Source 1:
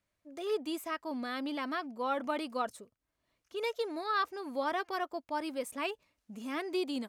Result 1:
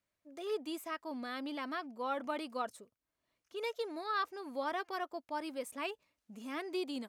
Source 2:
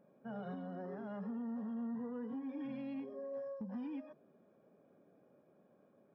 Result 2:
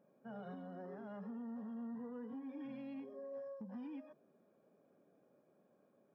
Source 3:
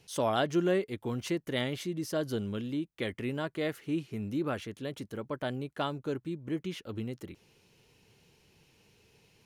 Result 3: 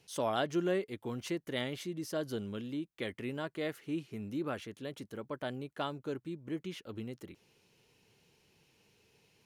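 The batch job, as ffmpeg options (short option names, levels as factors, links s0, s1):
-af "lowshelf=f=100:g=-7.5,volume=0.668"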